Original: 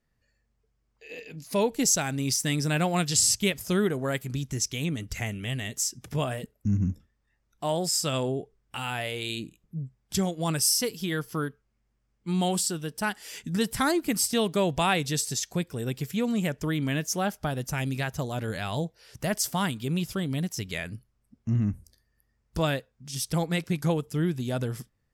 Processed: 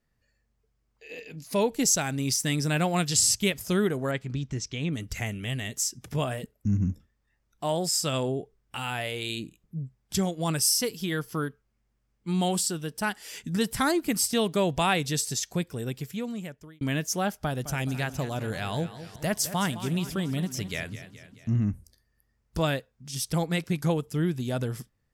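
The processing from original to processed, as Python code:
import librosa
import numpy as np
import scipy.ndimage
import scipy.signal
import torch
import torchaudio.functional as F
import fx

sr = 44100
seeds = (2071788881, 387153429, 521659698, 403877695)

y = fx.air_absorb(x, sr, metres=120.0, at=(4.11, 4.93))
y = fx.echo_warbled(y, sr, ms=213, feedback_pct=54, rate_hz=2.8, cents=82, wet_db=-13, at=(17.34, 21.56))
y = fx.edit(y, sr, fx.fade_out_span(start_s=15.67, length_s=1.14), tone=tone)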